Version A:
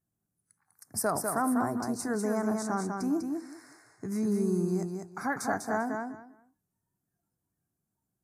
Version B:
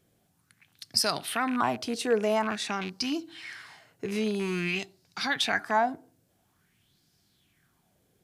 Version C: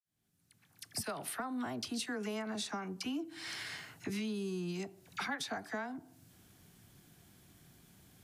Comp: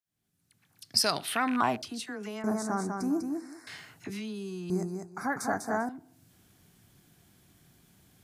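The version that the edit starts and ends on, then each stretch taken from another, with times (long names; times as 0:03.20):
C
0:00.83–0:01.82: punch in from B
0:02.44–0:03.67: punch in from A
0:04.70–0:05.89: punch in from A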